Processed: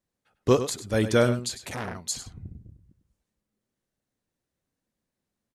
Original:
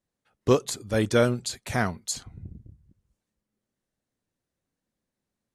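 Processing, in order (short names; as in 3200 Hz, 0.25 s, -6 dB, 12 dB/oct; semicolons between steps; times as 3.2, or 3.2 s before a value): outdoor echo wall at 17 m, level -11 dB; 1.54–1.95 core saturation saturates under 2300 Hz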